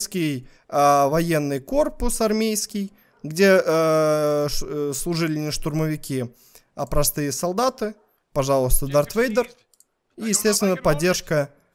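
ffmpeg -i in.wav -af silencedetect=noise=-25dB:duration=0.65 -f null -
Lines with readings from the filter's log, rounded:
silence_start: 9.45
silence_end: 10.22 | silence_duration: 0.77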